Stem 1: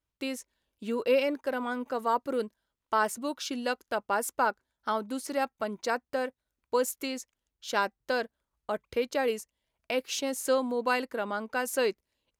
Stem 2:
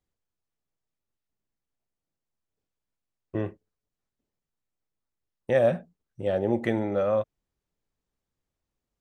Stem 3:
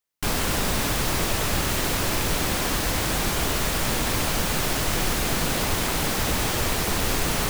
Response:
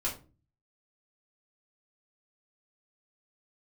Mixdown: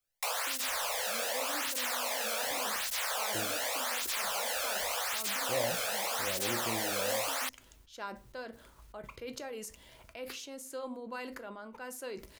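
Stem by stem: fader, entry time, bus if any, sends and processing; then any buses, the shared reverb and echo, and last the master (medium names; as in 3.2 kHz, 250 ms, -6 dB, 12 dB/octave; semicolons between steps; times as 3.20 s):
-16.5 dB, 0.25 s, bus A, send -11.5 dB, decay stretcher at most 27 dB/s
-15.0 dB, 0.00 s, no bus, send -13 dB, none
+1.0 dB, 0.00 s, bus A, no send, steep high-pass 470 Hz 96 dB/octave; cancelling through-zero flanger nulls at 0.86 Hz, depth 1.1 ms
bus A: 0.0 dB, compression, threshold -31 dBFS, peak gain reduction 6.5 dB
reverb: on, RT60 0.35 s, pre-delay 3 ms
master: none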